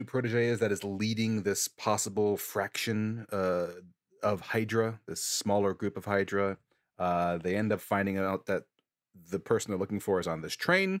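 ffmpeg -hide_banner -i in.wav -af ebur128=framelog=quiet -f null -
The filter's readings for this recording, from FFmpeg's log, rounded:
Integrated loudness:
  I:         -30.9 LUFS
  Threshold: -41.2 LUFS
Loudness range:
  LRA:         1.6 LU
  Threshold: -51.5 LUFS
  LRA low:   -32.3 LUFS
  LRA high:  -30.7 LUFS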